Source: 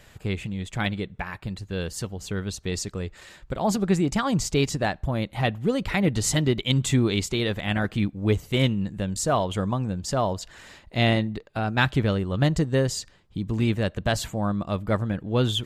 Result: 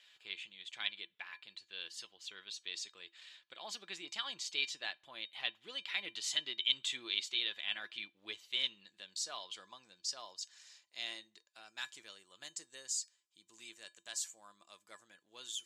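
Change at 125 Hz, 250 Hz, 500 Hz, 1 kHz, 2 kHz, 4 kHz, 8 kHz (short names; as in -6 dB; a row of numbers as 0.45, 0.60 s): under -40 dB, -37.0 dB, -30.5 dB, -23.5 dB, -12.5 dB, -5.0 dB, -10.0 dB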